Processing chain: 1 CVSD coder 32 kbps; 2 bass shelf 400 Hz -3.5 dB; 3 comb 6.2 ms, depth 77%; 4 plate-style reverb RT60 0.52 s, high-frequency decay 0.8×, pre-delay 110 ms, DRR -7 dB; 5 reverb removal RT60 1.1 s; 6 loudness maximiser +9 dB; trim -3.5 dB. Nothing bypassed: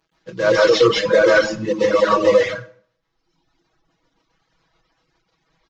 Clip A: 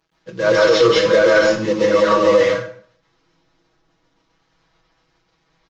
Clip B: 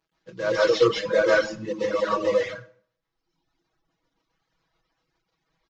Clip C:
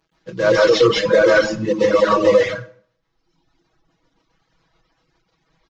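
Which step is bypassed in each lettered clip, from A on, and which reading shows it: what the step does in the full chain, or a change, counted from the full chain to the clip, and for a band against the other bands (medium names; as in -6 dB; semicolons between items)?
5, momentary loudness spread change -3 LU; 6, crest factor change +5.0 dB; 2, 125 Hz band +2.5 dB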